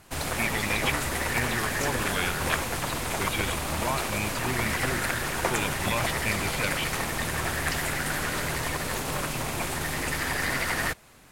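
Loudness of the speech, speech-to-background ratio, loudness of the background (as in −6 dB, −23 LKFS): −32.5 LKFS, −4.0 dB, −28.5 LKFS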